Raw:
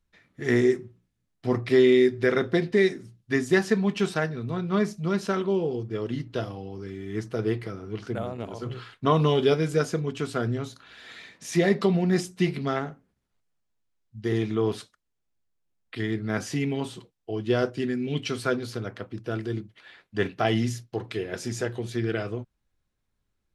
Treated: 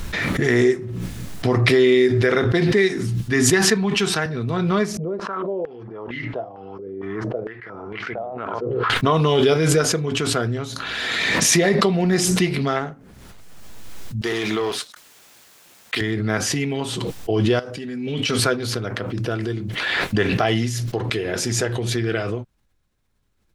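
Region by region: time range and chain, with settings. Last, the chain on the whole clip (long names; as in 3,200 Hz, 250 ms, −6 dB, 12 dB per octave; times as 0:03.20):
0:02.44–0:04.26: parametric band 570 Hz −8 dB 0.36 octaves + multiband upward and downward expander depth 40%
0:04.97–0:08.90: spectral tilt −2.5 dB per octave + band-pass on a step sequencer 4.4 Hz 480–2,100 Hz
0:14.21–0:16.01: high-pass filter 950 Hz 6 dB per octave + leveller curve on the samples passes 2
0:17.59–0:18.39: low-shelf EQ 210 Hz −6.5 dB + downward compressor 10 to 1, threshold −34 dBFS + notch comb filter 350 Hz
whole clip: dynamic equaliser 210 Hz, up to −5 dB, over −34 dBFS, Q 0.73; boost into a limiter +12.5 dB; background raised ahead of every attack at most 20 dB per second; level −6 dB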